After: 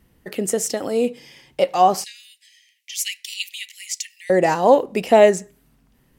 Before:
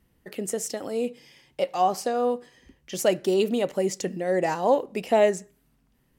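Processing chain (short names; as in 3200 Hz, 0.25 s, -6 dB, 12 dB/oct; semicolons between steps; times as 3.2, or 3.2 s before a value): 2.04–4.3 steep high-pass 2000 Hz 72 dB/oct; gain +7.5 dB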